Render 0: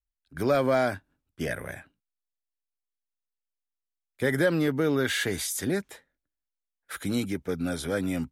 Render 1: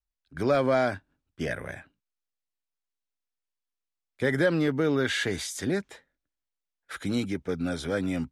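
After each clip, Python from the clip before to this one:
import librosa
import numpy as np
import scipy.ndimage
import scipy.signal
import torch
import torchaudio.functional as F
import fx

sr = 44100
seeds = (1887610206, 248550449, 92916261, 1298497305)

y = scipy.signal.sosfilt(scipy.signal.butter(2, 7000.0, 'lowpass', fs=sr, output='sos'), x)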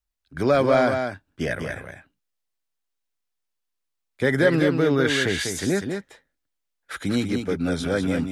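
y = x + 10.0 ** (-6.0 / 20.0) * np.pad(x, (int(197 * sr / 1000.0), 0))[:len(x)]
y = y * librosa.db_to_amplitude(4.5)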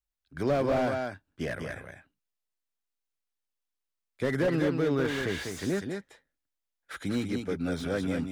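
y = fx.slew_limit(x, sr, full_power_hz=95.0)
y = y * librosa.db_to_amplitude(-6.5)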